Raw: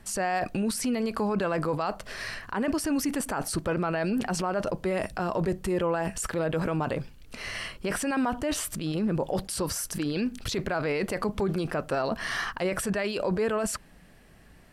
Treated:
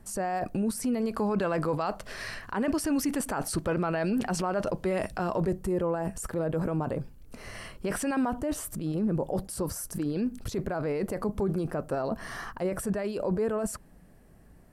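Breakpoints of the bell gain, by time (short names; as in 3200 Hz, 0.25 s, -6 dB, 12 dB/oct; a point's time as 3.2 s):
bell 3100 Hz 2.4 oct
0.78 s -11.5 dB
1.41 s -3 dB
5.3 s -3 dB
5.7 s -13.5 dB
7.43 s -13.5 dB
8.07 s -4 dB
8.48 s -13.5 dB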